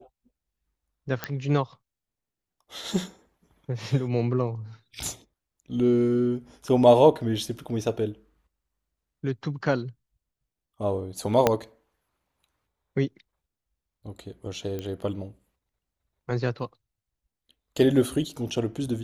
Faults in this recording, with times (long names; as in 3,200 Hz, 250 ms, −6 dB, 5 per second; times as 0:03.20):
0:01.24: click −12 dBFS
0:11.47: click −5 dBFS
0:14.79: click −20 dBFS